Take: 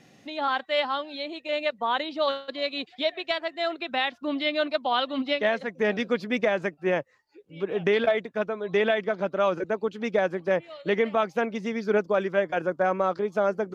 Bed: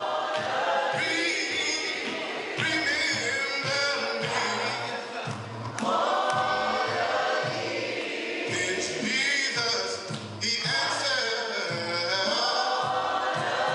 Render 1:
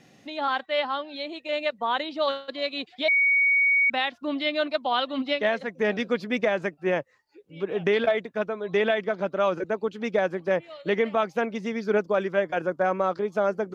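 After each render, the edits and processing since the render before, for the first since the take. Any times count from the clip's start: 0.66–1.16 s: distance through air 86 m; 3.08–3.90 s: bleep 2.24 kHz -17.5 dBFS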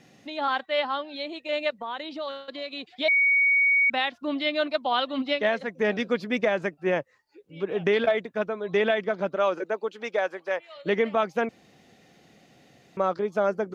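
1.80–2.91 s: compression 2.5:1, threshold -33 dBFS; 9.35–10.75 s: high-pass 260 Hz -> 780 Hz; 11.49–12.97 s: room tone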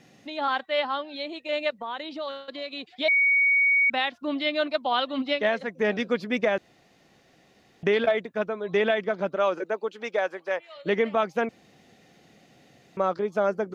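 6.58–7.83 s: room tone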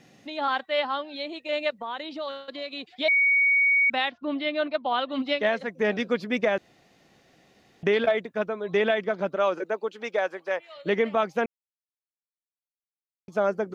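4.10–5.12 s: distance through air 190 m; 11.46–13.28 s: mute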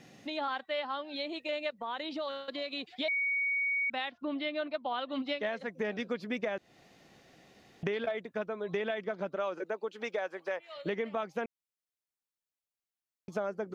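compression 3:1, threshold -34 dBFS, peak gain reduction 12 dB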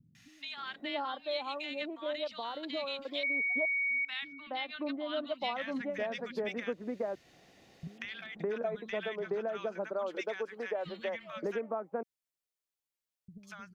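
three bands offset in time lows, highs, mids 150/570 ms, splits 180/1300 Hz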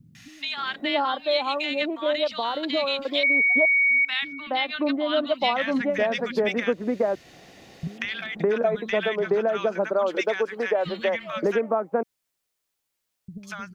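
trim +12 dB

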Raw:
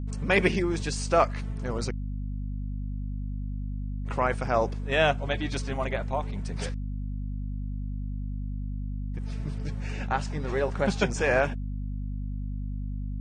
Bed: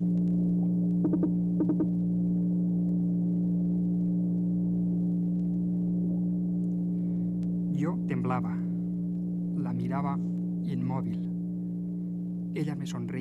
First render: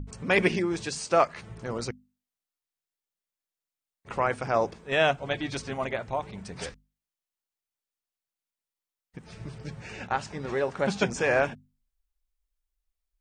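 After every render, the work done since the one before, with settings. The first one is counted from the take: hum notches 50/100/150/200/250 Hz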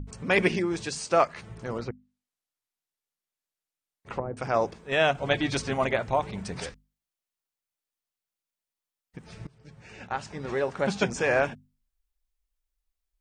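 1.78–4.37 s: low-pass that closes with the level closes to 400 Hz, closed at -25.5 dBFS; 5.15–6.60 s: gain +5 dB; 9.47–10.50 s: fade in, from -22 dB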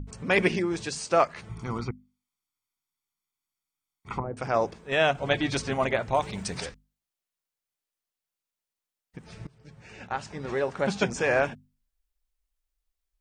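1.49–4.24 s: comb 0.9 ms, depth 76%; 6.14–6.61 s: treble shelf 2.9 kHz +9.5 dB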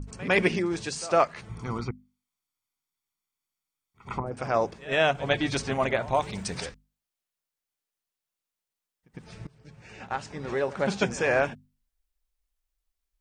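reverse echo 106 ms -19 dB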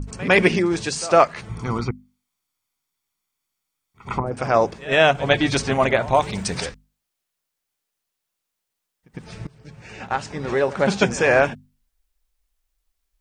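trim +7.5 dB; peak limiter -3 dBFS, peak gain reduction 1 dB

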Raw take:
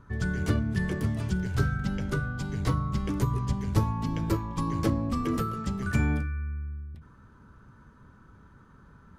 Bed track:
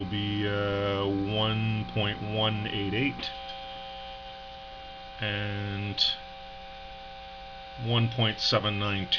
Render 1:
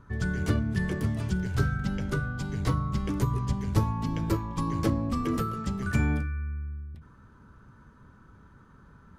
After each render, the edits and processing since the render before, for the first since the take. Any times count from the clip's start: no audible change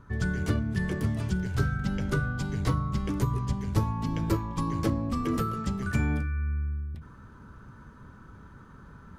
gain riding within 5 dB 0.5 s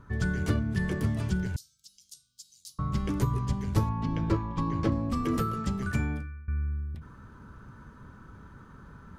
1.56–2.79 s: inverse Chebyshev high-pass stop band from 1.9 kHz, stop band 50 dB; 3.89–4.92 s: Bessel low-pass 3.7 kHz; 5.83–6.48 s: fade out, to -21.5 dB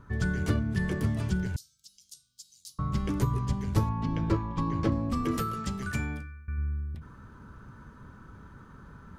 5.31–6.58 s: tilt shelf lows -3.5 dB, about 1.4 kHz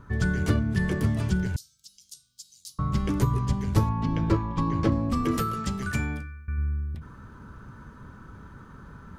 trim +3.5 dB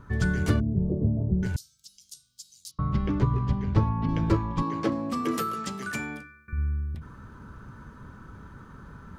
0.60–1.43 s: steep low-pass 660 Hz; 2.71–4.09 s: distance through air 220 m; 4.62–6.53 s: high-pass 240 Hz

